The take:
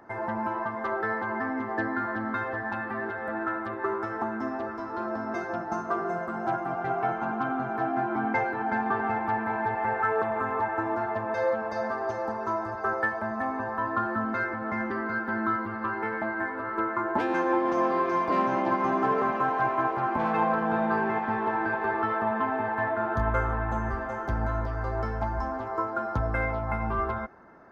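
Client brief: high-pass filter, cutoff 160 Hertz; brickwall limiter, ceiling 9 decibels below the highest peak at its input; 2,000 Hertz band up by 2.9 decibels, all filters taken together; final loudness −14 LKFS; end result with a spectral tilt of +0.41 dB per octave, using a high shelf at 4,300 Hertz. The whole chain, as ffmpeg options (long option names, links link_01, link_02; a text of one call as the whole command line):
ffmpeg -i in.wav -af "highpass=160,equalizer=frequency=2000:width_type=o:gain=4.5,highshelf=frequency=4300:gain=-4,volume=16.5dB,alimiter=limit=-5dB:level=0:latency=1" out.wav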